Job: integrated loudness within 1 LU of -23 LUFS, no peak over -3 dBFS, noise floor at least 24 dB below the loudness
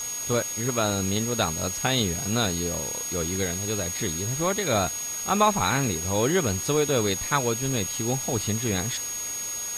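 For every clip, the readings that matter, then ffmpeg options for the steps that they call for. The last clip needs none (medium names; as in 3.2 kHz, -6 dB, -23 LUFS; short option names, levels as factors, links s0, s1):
steady tone 6.6 kHz; tone level -30 dBFS; noise floor -32 dBFS; noise floor target -49 dBFS; loudness -25.0 LUFS; peak level -7.5 dBFS; loudness target -23.0 LUFS
-> -af "bandreject=f=6600:w=30"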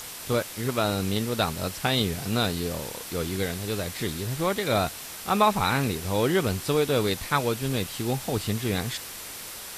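steady tone not found; noise floor -39 dBFS; noise floor target -51 dBFS
-> -af "afftdn=nr=12:nf=-39"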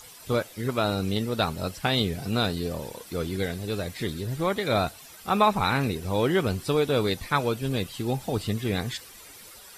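noise floor -47 dBFS; noise floor target -51 dBFS
-> -af "afftdn=nr=6:nf=-47"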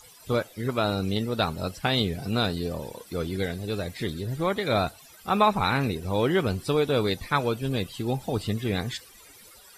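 noise floor -51 dBFS; loudness -27.0 LUFS; peak level -8.0 dBFS; loudness target -23.0 LUFS
-> -af "volume=1.58"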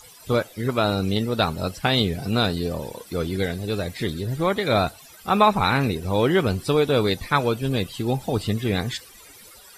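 loudness -23.0 LUFS; peak level -4.0 dBFS; noise floor -47 dBFS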